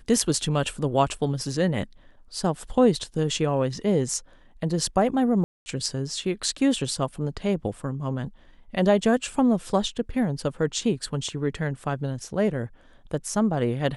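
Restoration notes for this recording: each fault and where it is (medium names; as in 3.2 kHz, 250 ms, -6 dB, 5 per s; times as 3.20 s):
5.44–5.66 s: dropout 220 ms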